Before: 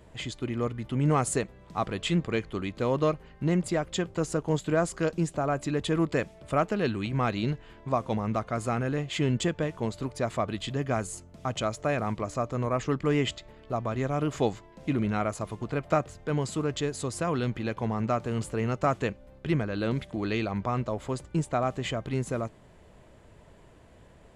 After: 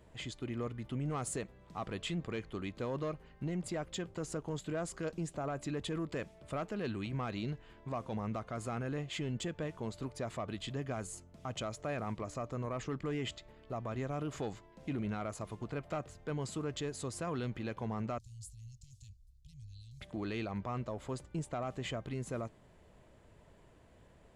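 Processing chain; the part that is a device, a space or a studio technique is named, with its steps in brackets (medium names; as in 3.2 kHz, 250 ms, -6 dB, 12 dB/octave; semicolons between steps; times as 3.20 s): soft clipper into limiter (saturation -17.5 dBFS, distortion -20 dB; peak limiter -23 dBFS, peak gain reduction 5 dB); 18.18–20.01 s: inverse Chebyshev band-stop 390–1200 Hz, stop band 80 dB; trim -7 dB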